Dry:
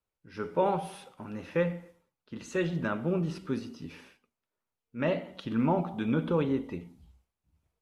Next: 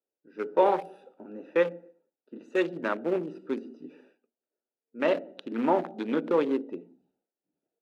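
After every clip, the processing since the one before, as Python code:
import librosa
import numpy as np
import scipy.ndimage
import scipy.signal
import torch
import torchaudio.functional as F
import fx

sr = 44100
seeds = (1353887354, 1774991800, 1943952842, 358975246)

y = fx.wiener(x, sr, points=41)
y = scipy.signal.sosfilt(scipy.signal.butter(4, 290.0, 'highpass', fs=sr, output='sos'), y)
y = F.gain(torch.from_numpy(y), 5.5).numpy()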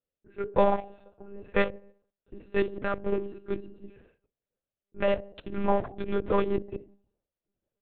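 y = fx.lpc_monotone(x, sr, seeds[0], pitch_hz=200.0, order=10)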